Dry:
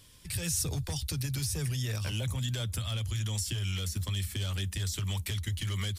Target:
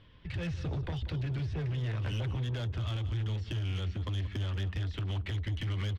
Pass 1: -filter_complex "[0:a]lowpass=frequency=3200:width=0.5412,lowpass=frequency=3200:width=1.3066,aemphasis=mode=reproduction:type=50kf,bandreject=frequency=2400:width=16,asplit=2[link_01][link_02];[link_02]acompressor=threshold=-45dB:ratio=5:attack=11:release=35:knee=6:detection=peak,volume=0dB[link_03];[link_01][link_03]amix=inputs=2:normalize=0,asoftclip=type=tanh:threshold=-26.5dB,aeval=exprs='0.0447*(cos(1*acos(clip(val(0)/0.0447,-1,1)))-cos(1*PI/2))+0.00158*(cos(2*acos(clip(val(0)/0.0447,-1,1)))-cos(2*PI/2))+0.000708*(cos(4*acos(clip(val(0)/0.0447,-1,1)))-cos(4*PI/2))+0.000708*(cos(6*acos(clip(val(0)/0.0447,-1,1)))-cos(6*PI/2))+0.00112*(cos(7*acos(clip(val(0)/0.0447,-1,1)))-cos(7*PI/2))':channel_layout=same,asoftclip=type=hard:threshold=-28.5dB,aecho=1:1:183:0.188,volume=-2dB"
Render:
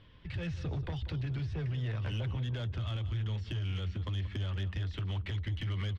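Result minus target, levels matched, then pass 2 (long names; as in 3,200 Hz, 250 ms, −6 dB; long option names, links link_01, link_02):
soft clipping: distortion +18 dB; downward compressor: peak gain reduction +5 dB
-filter_complex "[0:a]lowpass=frequency=3200:width=0.5412,lowpass=frequency=3200:width=1.3066,aemphasis=mode=reproduction:type=50kf,bandreject=frequency=2400:width=16,asplit=2[link_01][link_02];[link_02]acompressor=threshold=-39dB:ratio=5:attack=11:release=35:knee=6:detection=peak,volume=0dB[link_03];[link_01][link_03]amix=inputs=2:normalize=0,asoftclip=type=tanh:threshold=-15dB,aeval=exprs='0.0447*(cos(1*acos(clip(val(0)/0.0447,-1,1)))-cos(1*PI/2))+0.00158*(cos(2*acos(clip(val(0)/0.0447,-1,1)))-cos(2*PI/2))+0.000708*(cos(4*acos(clip(val(0)/0.0447,-1,1)))-cos(4*PI/2))+0.000708*(cos(6*acos(clip(val(0)/0.0447,-1,1)))-cos(6*PI/2))+0.00112*(cos(7*acos(clip(val(0)/0.0447,-1,1)))-cos(7*PI/2))':channel_layout=same,asoftclip=type=hard:threshold=-28.5dB,aecho=1:1:183:0.188,volume=-2dB"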